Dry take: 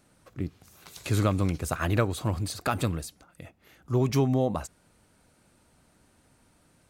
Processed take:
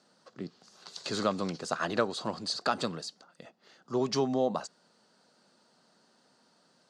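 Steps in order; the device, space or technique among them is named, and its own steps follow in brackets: television speaker (cabinet simulation 200–7000 Hz, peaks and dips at 300 Hz -9 dB, 2.3 kHz -10 dB, 4.6 kHz +9 dB)

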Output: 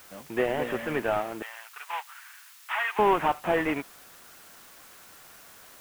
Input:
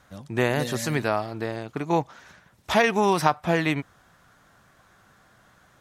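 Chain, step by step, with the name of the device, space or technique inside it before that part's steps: army field radio (band-pass 310–3300 Hz; CVSD coder 16 kbps; white noise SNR 23 dB); 1.42–2.99 s: high-pass 1.1 kHz 24 dB/octave; trim +2 dB

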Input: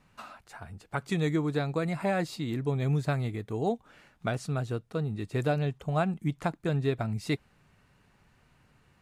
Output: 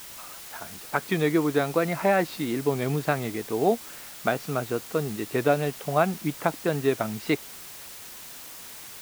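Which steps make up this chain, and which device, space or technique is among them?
dictaphone (band-pass 250–3200 Hz; level rider; wow and flutter; white noise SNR 15 dB); trim -3.5 dB

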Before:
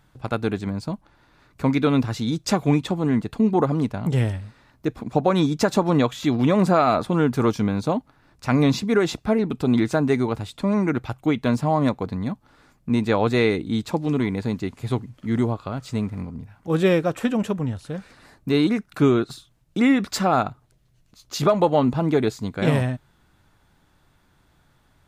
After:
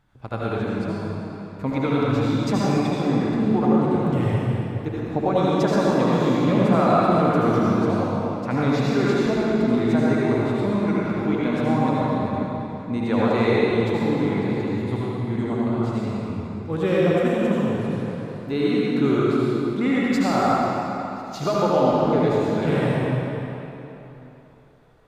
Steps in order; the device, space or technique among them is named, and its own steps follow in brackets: swimming-pool hall (reverberation RT60 3.4 s, pre-delay 67 ms, DRR -7 dB; treble shelf 4.4 kHz -8 dB); trim -6 dB

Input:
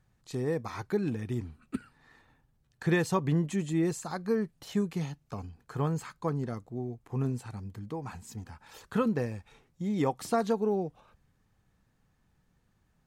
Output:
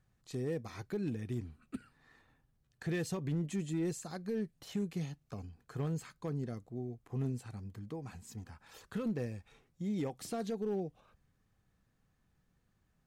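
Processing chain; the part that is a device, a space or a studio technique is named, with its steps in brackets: band-stop 890 Hz, Q 12; limiter into clipper (peak limiter -22 dBFS, peak gain reduction 6.5 dB; hard clipper -24.5 dBFS, distortion -23 dB); dynamic bell 1.1 kHz, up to -8 dB, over -52 dBFS, Q 1.3; trim -4.5 dB

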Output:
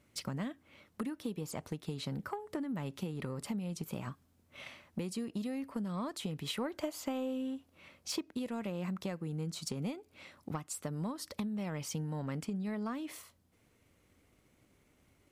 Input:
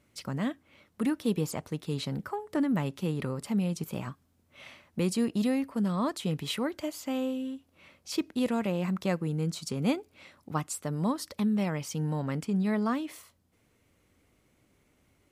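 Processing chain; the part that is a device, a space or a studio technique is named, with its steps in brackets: drum-bus smash (transient shaper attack +5 dB, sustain +1 dB; compression 10:1, threshold -32 dBFS, peak gain reduction 13.5 dB; saturation -25 dBFS, distortion -23 dB); 6.55–8.31 s: dynamic bell 800 Hz, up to +5 dB, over -51 dBFS, Q 0.73; trim -1.5 dB

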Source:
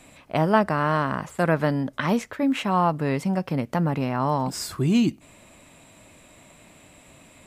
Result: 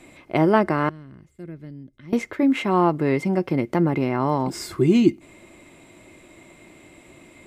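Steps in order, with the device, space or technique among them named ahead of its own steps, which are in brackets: 0.89–2.13 s: amplifier tone stack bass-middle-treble 10-0-1; inside a helmet (treble shelf 5.7 kHz -4.5 dB; small resonant body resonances 350/2100 Hz, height 14 dB, ringing for 50 ms)

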